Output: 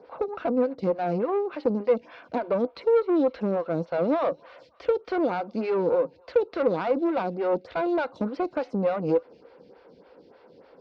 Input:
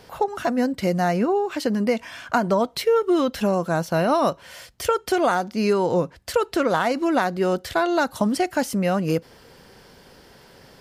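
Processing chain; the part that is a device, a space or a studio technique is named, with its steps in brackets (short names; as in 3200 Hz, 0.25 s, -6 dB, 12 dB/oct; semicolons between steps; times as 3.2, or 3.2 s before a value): LPF 7800 Hz; thin delay 0.248 s, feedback 39%, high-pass 1500 Hz, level -20 dB; vibe pedal into a guitar amplifier (photocell phaser 3.4 Hz; tube stage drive 22 dB, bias 0.65; speaker cabinet 76–3900 Hz, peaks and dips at 82 Hz -7 dB, 120 Hz -7 dB, 300 Hz +6 dB, 500 Hz +9 dB, 1800 Hz -8 dB, 3100 Hz -8 dB)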